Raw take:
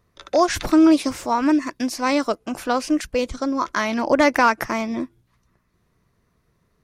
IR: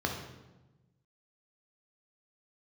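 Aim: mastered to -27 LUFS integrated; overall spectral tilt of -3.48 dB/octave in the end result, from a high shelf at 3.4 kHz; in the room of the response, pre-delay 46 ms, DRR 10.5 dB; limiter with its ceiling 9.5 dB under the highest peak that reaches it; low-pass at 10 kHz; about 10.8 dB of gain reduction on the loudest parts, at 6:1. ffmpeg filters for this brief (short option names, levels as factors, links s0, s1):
-filter_complex "[0:a]lowpass=10000,highshelf=f=3400:g=5,acompressor=threshold=0.0794:ratio=6,alimiter=limit=0.1:level=0:latency=1,asplit=2[s0][s1];[1:a]atrim=start_sample=2205,adelay=46[s2];[s1][s2]afir=irnorm=-1:irlink=0,volume=0.126[s3];[s0][s3]amix=inputs=2:normalize=0,volume=1.33"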